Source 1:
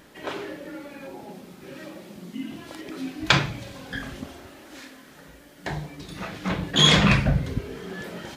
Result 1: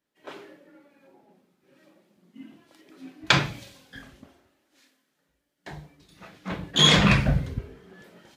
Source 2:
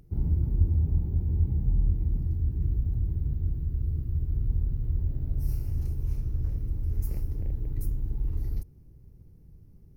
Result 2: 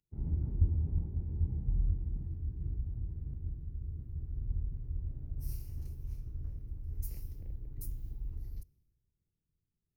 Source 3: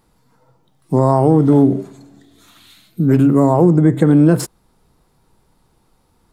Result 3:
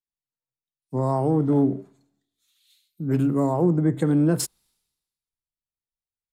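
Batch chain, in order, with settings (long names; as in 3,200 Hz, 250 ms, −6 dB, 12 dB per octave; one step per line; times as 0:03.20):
multiband upward and downward expander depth 100%
level −9.5 dB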